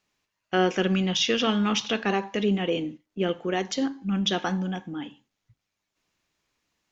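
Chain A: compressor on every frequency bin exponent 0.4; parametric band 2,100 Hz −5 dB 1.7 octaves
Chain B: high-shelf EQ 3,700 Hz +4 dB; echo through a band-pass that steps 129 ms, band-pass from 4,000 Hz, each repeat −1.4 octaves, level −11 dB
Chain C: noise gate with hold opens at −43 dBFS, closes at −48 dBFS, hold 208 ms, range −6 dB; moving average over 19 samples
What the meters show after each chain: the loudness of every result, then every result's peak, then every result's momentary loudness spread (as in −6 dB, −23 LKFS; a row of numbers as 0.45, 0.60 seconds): −22.5, −25.5, −28.0 LKFS; −7.5, −9.0, −11.5 dBFS; 20, 10, 8 LU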